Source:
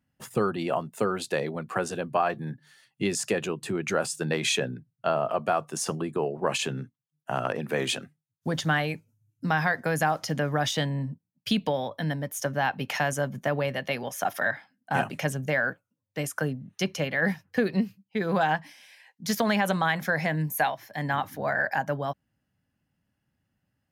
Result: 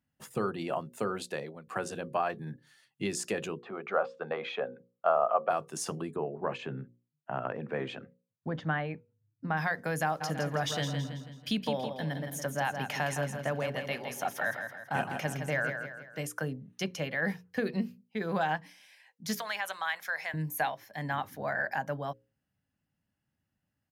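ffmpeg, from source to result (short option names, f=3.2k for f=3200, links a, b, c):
-filter_complex "[0:a]asplit=3[a][b][c];[a]afade=t=out:st=3.58:d=0.02[d];[b]highpass=310,equalizer=f=320:t=q:w=4:g=-8,equalizer=f=520:t=q:w=4:g=6,equalizer=f=740:t=q:w=4:g=8,equalizer=f=1.2k:t=q:w=4:g=10,equalizer=f=1.8k:t=q:w=4:g=-5,equalizer=f=2.7k:t=q:w=4:g=-6,lowpass=f=2.8k:w=0.5412,lowpass=f=2.8k:w=1.3066,afade=t=in:st=3.58:d=0.02,afade=t=out:st=5.49:d=0.02[e];[c]afade=t=in:st=5.49:d=0.02[f];[d][e][f]amix=inputs=3:normalize=0,asplit=3[g][h][i];[g]afade=t=out:st=6.15:d=0.02[j];[h]lowpass=1.9k,afade=t=in:st=6.15:d=0.02,afade=t=out:st=9.56:d=0.02[k];[i]afade=t=in:st=9.56:d=0.02[l];[j][k][l]amix=inputs=3:normalize=0,asplit=3[m][n][o];[m]afade=t=out:st=10.2:d=0.02[p];[n]aecho=1:1:164|328|492|656|820:0.447|0.197|0.0865|0.0381|0.0167,afade=t=in:st=10.2:d=0.02,afade=t=out:st=16.23:d=0.02[q];[o]afade=t=in:st=16.23:d=0.02[r];[p][q][r]amix=inputs=3:normalize=0,asettb=1/sr,asplit=3[s][t][u];[s]atrim=end=19.384[v];[t]atrim=start=19.38:end=20.34,asetpts=PTS-STARTPTS,afade=t=in:d=0.004:c=qsin,afade=t=out:st=0.956:d=0.004:c=qsin,highpass=980[w];[u]atrim=start=20.336[x];[v][w]acrossfade=d=0.004:c1=hsin:c2=qsin[y];[y][x]acrossfade=d=0.004:c1=qsin:c2=hsin,asplit=2[z][aa];[z]atrim=end=1.67,asetpts=PTS-STARTPTS,afade=t=out:st=1.2:d=0.47:silence=0.237137[ab];[aa]atrim=start=1.67,asetpts=PTS-STARTPTS,afade=t=in:d=0.004:c=hsin:silence=0.237137[ac];[ab][ac]concat=n=2:v=0:a=1,bandreject=f=60:t=h:w=6,bandreject=f=120:t=h:w=6,bandreject=f=180:t=h:w=6,bandreject=f=240:t=h:w=6,bandreject=f=300:t=h:w=6,bandreject=f=360:t=h:w=6,bandreject=f=420:t=h:w=6,bandreject=f=480:t=h:w=6,bandreject=f=540:t=h:w=6,volume=-5.5dB"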